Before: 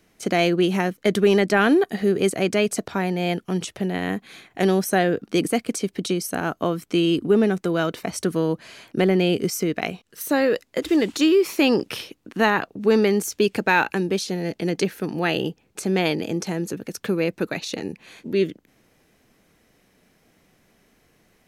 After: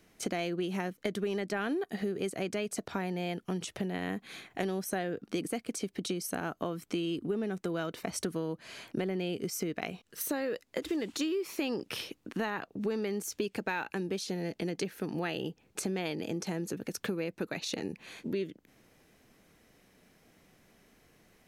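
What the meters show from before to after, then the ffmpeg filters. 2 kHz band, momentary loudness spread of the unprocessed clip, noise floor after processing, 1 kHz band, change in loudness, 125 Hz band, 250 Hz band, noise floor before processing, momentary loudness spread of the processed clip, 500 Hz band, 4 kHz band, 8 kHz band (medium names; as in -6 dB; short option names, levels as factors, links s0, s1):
-13.5 dB, 10 LU, -68 dBFS, -13.5 dB, -13.0 dB, -12.0 dB, -12.5 dB, -63 dBFS, 5 LU, -13.5 dB, -11.5 dB, -8.0 dB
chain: -af "acompressor=threshold=0.0355:ratio=5,volume=0.75"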